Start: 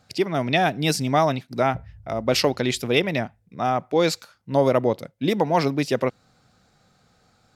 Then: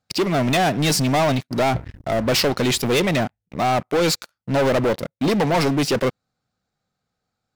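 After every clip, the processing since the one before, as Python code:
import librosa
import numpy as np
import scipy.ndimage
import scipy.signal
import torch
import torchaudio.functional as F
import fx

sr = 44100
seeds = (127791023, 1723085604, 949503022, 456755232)

y = fx.leveller(x, sr, passes=5)
y = y * 10.0 ** (-8.5 / 20.0)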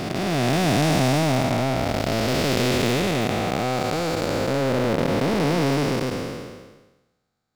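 y = fx.spec_blur(x, sr, span_ms=804.0)
y = y * 10.0 ** (3.5 / 20.0)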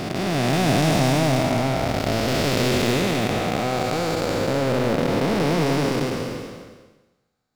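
y = x + 10.0 ** (-8.0 / 20.0) * np.pad(x, (int(193 * sr / 1000.0), 0))[:len(x)]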